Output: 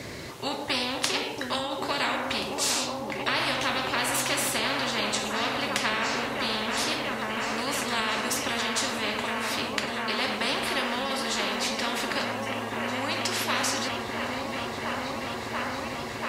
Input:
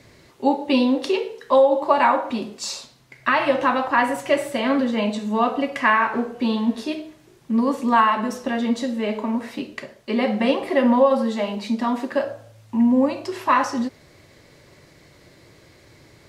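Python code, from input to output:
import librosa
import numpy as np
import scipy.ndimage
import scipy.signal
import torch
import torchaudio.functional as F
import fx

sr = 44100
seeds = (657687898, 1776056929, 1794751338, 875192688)

y = scipy.signal.sosfilt(scipy.signal.butter(2, 59.0, 'highpass', fs=sr, output='sos'), x)
y = fx.echo_opening(y, sr, ms=686, hz=400, octaves=1, feedback_pct=70, wet_db=-6)
y = fx.spectral_comp(y, sr, ratio=4.0)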